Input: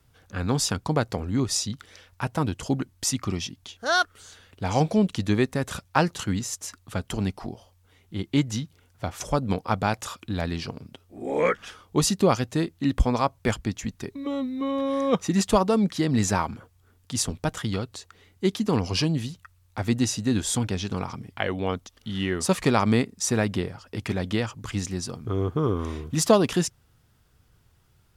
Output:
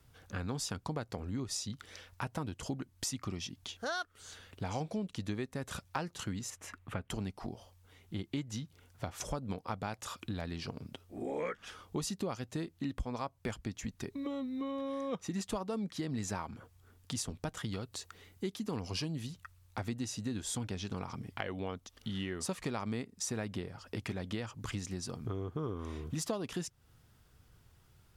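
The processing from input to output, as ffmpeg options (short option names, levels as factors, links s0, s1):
-filter_complex "[0:a]asettb=1/sr,asplit=3[s0][s1][s2];[s0]atrim=end=6.504[s3];[s1]atrim=start=6.5:end=7.1,asetpts=PTS-STARTPTS,afade=t=in:d=0.004:c=qsin,afade=t=out:st=0.596:d=0.004:c=qsin,highshelf=f=3300:t=q:w=1.5:g=-11[s4];[s2]atrim=start=7.096[s5];[s3][s4]acrossfade=d=0.004:c1=hsin:c2=qsin[s6];[s6][s5]acrossfade=d=0.004:c1=qsin:c2=hsin,asettb=1/sr,asplit=3[s7][s8][s9];[s7]atrim=end=17.714[s10];[s8]atrim=start=17.71:end=19.27,asetpts=PTS-STARTPTS,afade=t=in:d=0.004:c=qsin,afade=t=out:st=1.556:d=0.004:c=qsin,highshelf=f=9400:g=6.5[s11];[s9]atrim=start=19.266[s12];[s10][s11]acrossfade=d=0.004:c1=hsin:c2=qsin[s13];[s13][s12]acrossfade=d=0.004:c1=qsin:c2=hsin,acompressor=threshold=0.0178:ratio=4,volume=0.841"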